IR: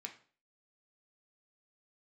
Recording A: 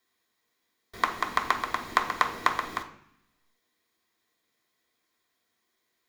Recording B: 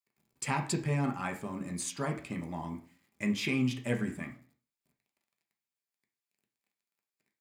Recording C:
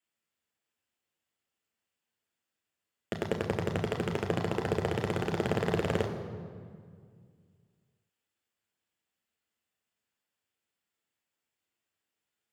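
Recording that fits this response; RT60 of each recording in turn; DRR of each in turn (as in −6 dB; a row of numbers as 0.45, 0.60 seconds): B; 0.65, 0.45, 2.0 seconds; −0.5, 2.5, 2.5 decibels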